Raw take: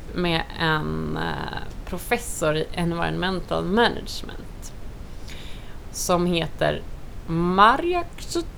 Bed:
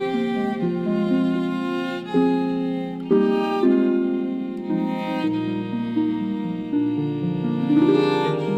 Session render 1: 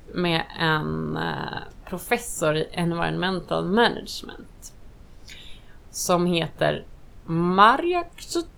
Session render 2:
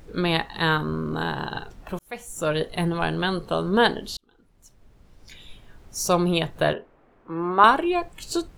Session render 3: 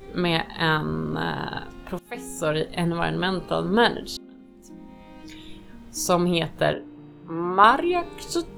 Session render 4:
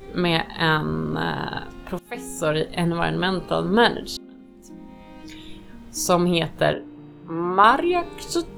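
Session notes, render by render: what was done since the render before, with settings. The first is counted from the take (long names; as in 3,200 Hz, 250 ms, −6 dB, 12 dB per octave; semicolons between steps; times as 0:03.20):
noise reduction from a noise print 10 dB
0:01.99–0:02.62: fade in; 0:04.17–0:05.98: fade in; 0:06.73–0:07.64: three-way crossover with the lows and the highs turned down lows −19 dB, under 250 Hz, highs −22 dB, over 2,200 Hz
mix in bed −21 dB
level +2 dB; brickwall limiter −3 dBFS, peak gain reduction 3 dB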